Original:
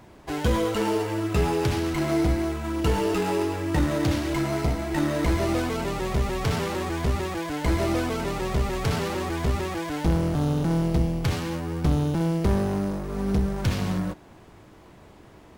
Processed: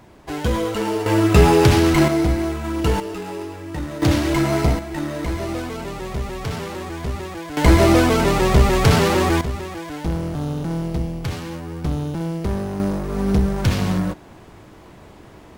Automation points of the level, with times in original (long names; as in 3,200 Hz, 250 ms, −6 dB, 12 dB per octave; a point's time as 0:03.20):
+2 dB
from 0:01.06 +11 dB
from 0:02.08 +4 dB
from 0:03.00 −5 dB
from 0:04.02 +7 dB
from 0:04.79 −1.5 dB
from 0:07.57 +11 dB
from 0:09.41 −1 dB
from 0:12.80 +6 dB